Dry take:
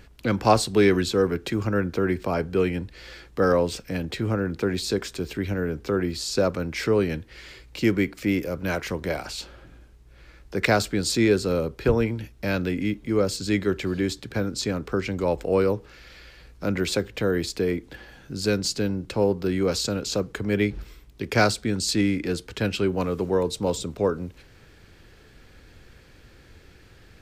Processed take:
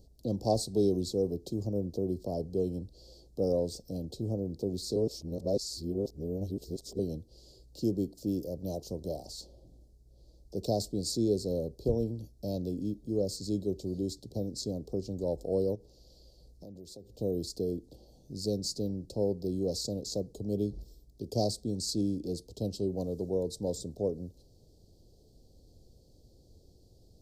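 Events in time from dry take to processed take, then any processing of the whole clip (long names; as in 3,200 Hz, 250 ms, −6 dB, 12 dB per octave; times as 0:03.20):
0:04.96–0:06.99: reverse
0:15.75–0:17.19: downward compressor, threshold −36 dBFS
whole clip: Chebyshev band-stop filter 670–4,500 Hz, order 3; level −7.5 dB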